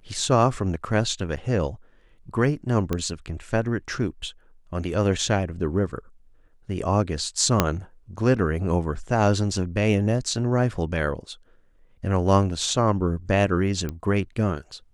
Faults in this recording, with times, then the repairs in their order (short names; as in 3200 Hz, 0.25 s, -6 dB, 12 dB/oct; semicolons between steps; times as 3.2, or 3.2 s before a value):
1.36–1.37 gap 7.4 ms
2.93 pop -12 dBFS
7.6 pop -2 dBFS
13.89 pop -17 dBFS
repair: de-click; interpolate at 1.36, 7.4 ms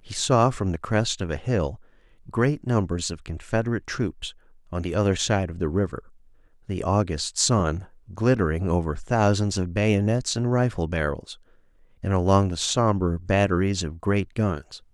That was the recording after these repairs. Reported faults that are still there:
7.6 pop